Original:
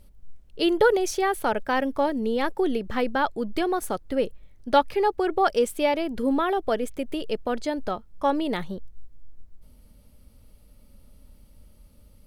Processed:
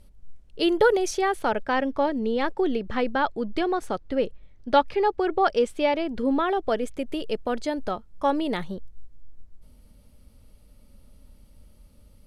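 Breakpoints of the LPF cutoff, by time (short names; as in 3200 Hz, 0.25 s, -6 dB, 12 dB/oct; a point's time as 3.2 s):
1.02 s 11000 Hz
1.69 s 5500 Hz
6.29 s 5500 Hz
7.24 s 12000 Hz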